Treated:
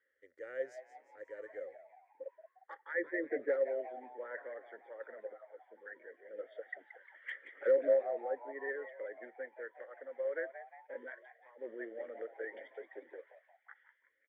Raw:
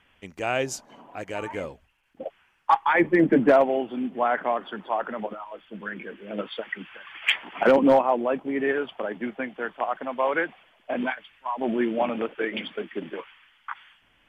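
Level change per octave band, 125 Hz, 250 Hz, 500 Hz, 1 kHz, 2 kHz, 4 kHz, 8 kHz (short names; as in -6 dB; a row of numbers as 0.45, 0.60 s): under -40 dB, -24.5 dB, -11.5 dB, -24.5 dB, -15.0 dB, under -30 dB, n/a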